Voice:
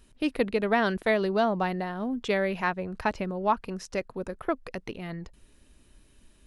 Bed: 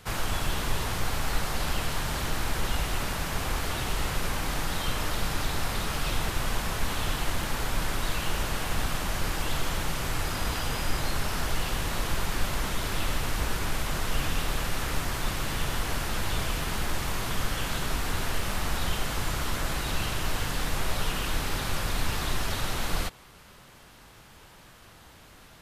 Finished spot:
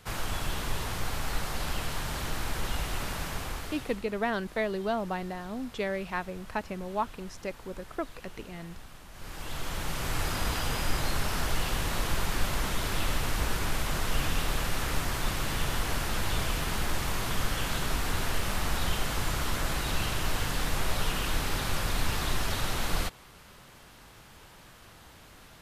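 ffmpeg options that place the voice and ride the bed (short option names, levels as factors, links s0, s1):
-filter_complex "[0:a]adelay=3500,volume=0.531[s0];[1:a]volume=5.96,afade=t=out:st=3.24:d=0.8:silence=0.158489,afade=t=in:st=9.12:d=1.1:silence=0.112202[s1];[s0][s1]amix=inputs=2:normalize=0"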